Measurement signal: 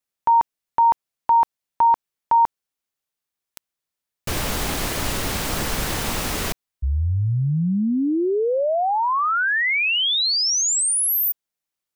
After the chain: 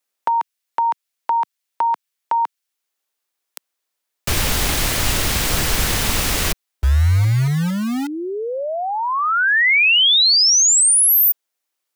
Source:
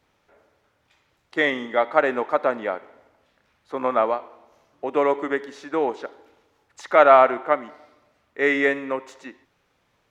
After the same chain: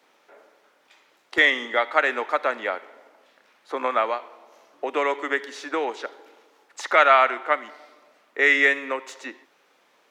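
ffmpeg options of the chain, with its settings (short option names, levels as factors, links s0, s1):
-filter_complex "[0:a]acrossover=split=130|1500[s0][s1][s2];[s1]acompressor=threshold=0.0112:ratio=2:release=676:knee=2.83:detection=peak[s3];[s0][s3][s2]amix=inputs=3:normalize=0,acrossover=split=250[s4][s5];[s4]acrusher=bits=5:mix=0:aa=0.000001[s6];[s6][s5]amix=inputs=2:normalize=0,volume=2.24"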